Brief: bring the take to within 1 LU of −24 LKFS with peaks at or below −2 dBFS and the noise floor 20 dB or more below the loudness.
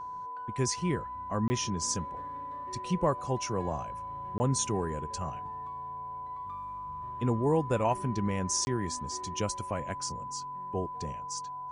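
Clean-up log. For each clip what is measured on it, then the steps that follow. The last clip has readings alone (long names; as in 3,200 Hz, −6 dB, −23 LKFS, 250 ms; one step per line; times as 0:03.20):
number of dropouts 3; longest dropout 20 ms; interfering tone 1,000 Hz; level of the tone −37 dBFS; integrated loudness −33.0 LKFS; sample peak −15.5 dBFS; target loudness −24.0 LKFS
→ repair the gap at 0:01.48/0:04.38/0:08.65, 20 ms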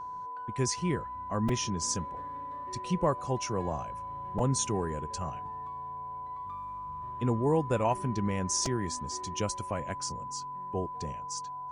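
number of dropouts 0; interfering tone 1,000 Hz; level of the tone −37 dBFS
→ notch filter 1,000 Hz, Q 30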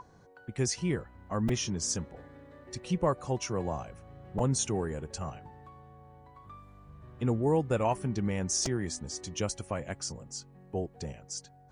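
interfering tone none found; integrated loudness −32.5 LKFS; sample peak −16.5 dBFS; target loudness −24.0 LKFS
→ level +8.5 dB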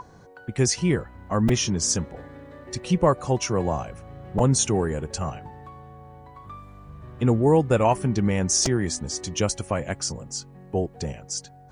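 integrated loudness −24.0 LKFS; sample peak −8.0 dBFS; background noise floor −49 dBFS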